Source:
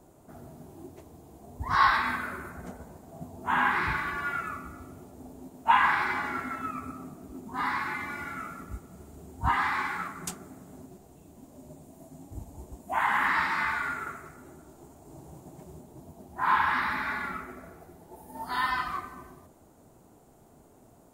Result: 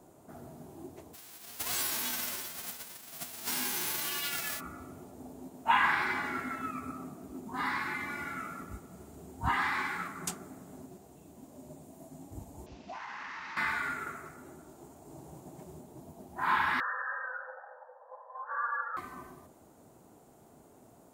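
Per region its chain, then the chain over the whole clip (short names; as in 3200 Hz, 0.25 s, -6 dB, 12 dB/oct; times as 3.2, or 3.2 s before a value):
1.13–4.59 spectral whitening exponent 0.1 + compressor 5:1, threshold -30 dBFS
12.66–13.57 CVSD 32 kbps + bell 2600 Hz +7 dB 0.31 oct + compressor 12:1, threshold -39 dBFS
16.8–18.97 brick-wall FIR band-pass 320–1700 Hz + frequency shift +150 Hz
whole clip: HPF 120 Hz 6 dB/oct; dynamic EQ 1000 Hz, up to -5 dB, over -40 dBFS, Q 1.1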